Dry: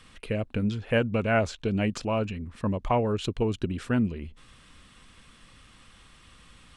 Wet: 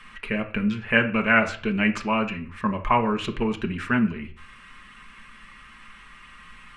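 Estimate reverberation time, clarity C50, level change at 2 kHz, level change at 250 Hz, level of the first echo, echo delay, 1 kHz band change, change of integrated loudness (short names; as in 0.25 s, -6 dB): 0.45 s, 13.0 dB, +11.0 dB, +4.0 dB, none, none, +7.0 dB, +4.0 dB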